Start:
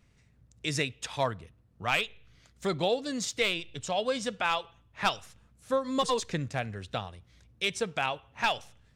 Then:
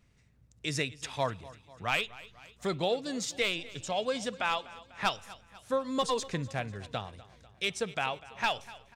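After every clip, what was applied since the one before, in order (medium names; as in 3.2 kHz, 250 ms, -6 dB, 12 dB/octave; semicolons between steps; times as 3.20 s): feedback delay 247 ms, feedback 55%, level -19 dB; trim -2 dB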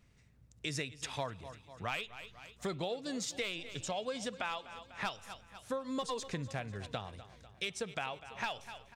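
compression 4:1, threshold -35 dBFS, peak gain reduction 10 dB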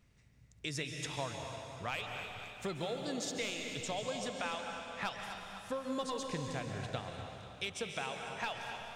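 plate-style reverb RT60 2.8 s, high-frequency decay 0.95×, pre-delay 120 ms, DRR 3 dB; trim -1.5 dB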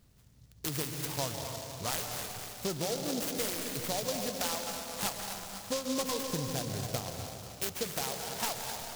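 delay time shaken by noise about 4.9 kHz, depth 0.15 ms; trim +4.5 dB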